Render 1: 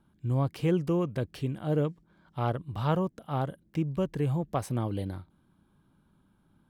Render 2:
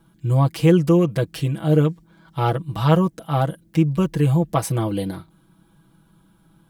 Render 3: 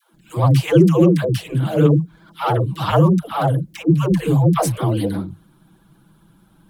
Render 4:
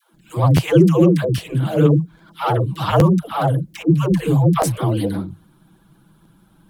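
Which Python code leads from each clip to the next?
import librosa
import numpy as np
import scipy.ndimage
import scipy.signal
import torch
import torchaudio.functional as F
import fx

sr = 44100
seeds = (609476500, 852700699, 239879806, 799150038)

y1 = fx.high_shelf(x, sr, hz=4100.0, db=7.0)
y1 = y1 + 0.84 * np.pad(y1, (int(6.1 * sr / 1000.0), 0))[:len(y1)]
y1 = F.gain(torch.from_numpy(y1), 7.0).numpy()
y2 = fx.vibrato(y1, sr, rate_hz=15.0, depth_cents=87.0)
y2 = fx.dispersion(y2, sr, late='lows', ms=141.0, hz=430.0)
y2 = F.gain(torch.from_numpy(y2), 3.0).numpy()
y3 = fx.buffer_crackle(y2, sr, first_s=0.56, period_s=0.81, block=512, kind='repeat')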